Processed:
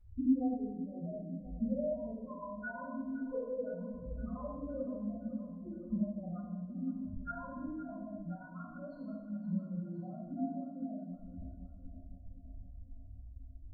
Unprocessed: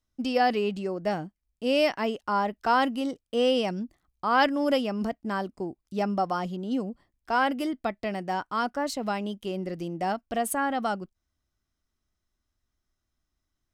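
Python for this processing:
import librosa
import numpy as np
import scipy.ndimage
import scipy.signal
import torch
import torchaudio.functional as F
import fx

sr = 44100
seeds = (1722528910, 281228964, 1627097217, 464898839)

p1 = scipy.signal.sosfilt(scipy.signal.butter(2, 1300.0, 'lowpass', fs=sr, output='sos'), x)
p2 = fx.peak_eq(p1, sr, hz=880.0, db=-8.0, octaves=0.33)
p3 = fx.over_compress(p2, sr, threshold_db=-41.0, ratio=-0.5)
p4 = p2 + (p3 * 10.0 ** (0.5 / 20.0))
p5 = fx.notch_comb(p4, sr, f0_hz=390.0)
p6 = fx.gate_flip(p5, sr, shuts_db=-27.0, range_db=-33)
p7 = fx.spec_topn(p6, sr, count=2)
p8 = fx.comb_fb(p7, sr, f0_hz=87.0, decay_s=0.52, harmonics='all', damping=0.0, mix_pct=70)
p9 = fx.echo_feedback(p8, sr, ms=515, feedback_pct=58, wet_db=-14.0)
p10 = fx.room_shoebox(p9, sr, seeds[0], volume_m3=430.0, walls='mixed', distance_m=7.6)
y = p10 * 10.0 ** (12.5 / 20.0)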